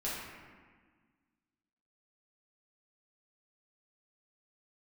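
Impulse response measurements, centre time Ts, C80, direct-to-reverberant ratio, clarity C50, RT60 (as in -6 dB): 97 ms, 1.5 dB, -8.5 dB, -1.0 dB, 1.5 s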